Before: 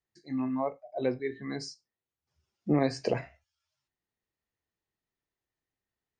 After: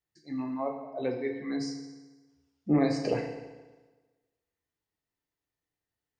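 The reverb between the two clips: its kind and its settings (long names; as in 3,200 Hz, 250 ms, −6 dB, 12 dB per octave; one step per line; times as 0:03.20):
feedback delay network reverb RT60 1.3 s, low-frequency decay 0.95×, high-frequency decay 0.85×, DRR 3 dB
level −2 dB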